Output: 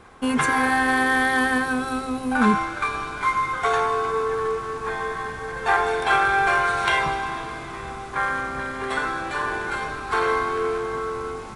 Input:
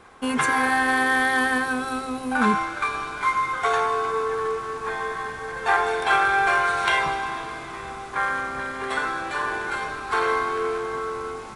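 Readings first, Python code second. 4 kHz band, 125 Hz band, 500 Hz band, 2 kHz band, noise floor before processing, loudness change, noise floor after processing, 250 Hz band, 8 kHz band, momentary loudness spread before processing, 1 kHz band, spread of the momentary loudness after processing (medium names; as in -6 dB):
0.0 dB, +5.0 dB, +1.5 dB, 0.0 dB, -35 dBFS, +0.5 dB, -34 dBFS, +3.0 dB, 0.0 dB, 10 LU, +0.5 dB, 10 LU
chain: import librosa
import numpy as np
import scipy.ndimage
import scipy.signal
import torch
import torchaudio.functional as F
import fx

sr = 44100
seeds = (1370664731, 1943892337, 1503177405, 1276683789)

y = fx.low_shelf(x, sr, hz=250.0, db=6.5)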